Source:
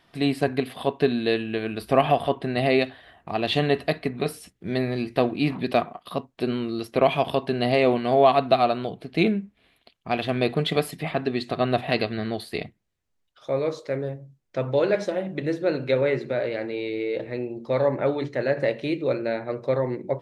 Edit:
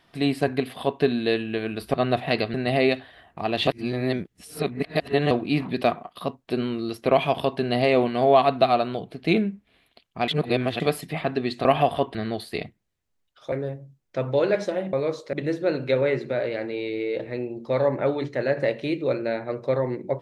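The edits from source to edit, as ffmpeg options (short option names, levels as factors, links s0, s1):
-filter_complex "[0:a]asplit=12[s0][s1][s2][s3][s4][s5][s6][s7][s8][s9][s10][s11];[s0]atrim=end=1.942[s12];[s1]atrim=start=11.548:end=12.152[s13];[s2]atrim=start=2.438:end=3.572[s14];[s3]atrim=start=3.568:end=5.212,asetpts=PTS-STARTPTS,areverse[s15];[s4]atrim=start=5.208:end=10.182[s16];[s5]atrim=start=10.178:end=10.702,asetpts=PTS-STARTPTS,areverse[s17];[s6]atrim=start=10.698:end=11.552[s18];[s7]atrim=start=1.938:end=2.442[s19];[s8]atrim=start=12.148:end=13.522[s20];[s9]atrim=start=13.918:end=15.332[s21];[s10]atrim=start=13.518:end=13.922[s22];[s11]atrim=start=15.328[s23];[s12][s13]acrossfade=d=0.004:c1=hsin:c2=hsin[s24];[s24][s14]acrossfade=d=0.004:c1=hsin:c2=hsin[s25];[s25][s15]acrossfade=d=0.004:c1=hsin:c2=hsin[s26];[s26][s16]acrossfade=d=0.004:c1=hsin:c2=hsin[s27];[s27][s17]acrossfade=d=0.004:c1=hsin:c2=hsin[s28];[s28][s18]acrossfade=d=0.004:c1=hsin:c2=hsin[s29];[s29][s19]acrossfade=d=0.004:c1=hsin:c2=hsin[s30];[s30][s20]acrossfade=d=0.004:c1=hsin:c2=hsin[s31];[s31][s21]acrossfade=d=0.004:c1=hsin:c2=hsin[s32];[s32][s22]acrossfade=d=0.004:c1=hsin:c2=hsin[s33];[s33][s23]acrossfade=d=0.004:c1=hsin:c2=hsin"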